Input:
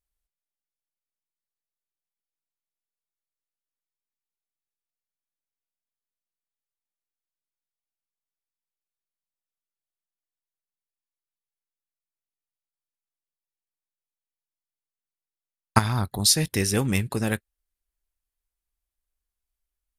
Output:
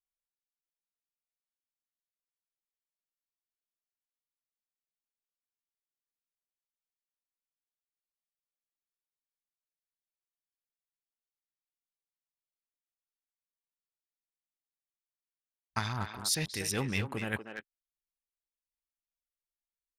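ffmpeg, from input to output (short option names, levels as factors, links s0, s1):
-filter_complex "[0:a]afwtdn=0.00794,tiltshelf=f=1100:g=-4.5,areverse,acompressor=threshold=0.0398:ratio=12,areverse,tremolo=f=1.6:d=0.31,asplit=2[s0][s1];[s1]adelay=240,highpass=300,lowpass=3400,asoftclip=type=hard:threshold=0.0531,volume=0.501[s2];[s0][s2]amix=inputs=2:normalize=0"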